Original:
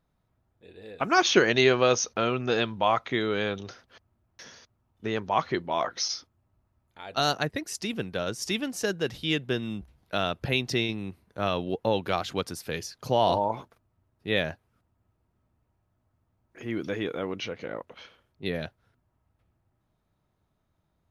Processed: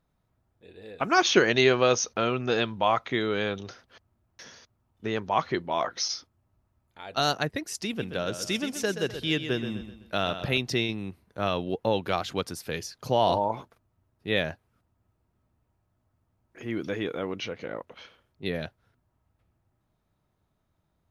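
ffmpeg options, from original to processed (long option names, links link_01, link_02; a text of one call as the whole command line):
ffmpeg -i in.wav -filter_complex "[0:a]asettb=1/sr,asplit=3[link_01][link_02][link_03];[link_01]atrim=end=7.884[link_04];[link_02]atrim=start=7.88:end=10.58,asetpts=PTS-STARTPTS,afade=type=in:duration=0.004:curve=qsin,afade=type=out:start_time=2.696:duration=0.004:curve=qsin,aecho=1:1:127|254|381|508:0.316|0.13|0.0532|0.0218,atrim=end_sample=119070[link_05];[link_03]atrim=start=10.576[link_06];[link_04][link_05]acrossfade=duration=0.004:curve1=hsin:curve2=qsin[link_07];[link_07][link_06]acrossfade=duration=0.004:curve1=qsin:curve2=hsin" out.wav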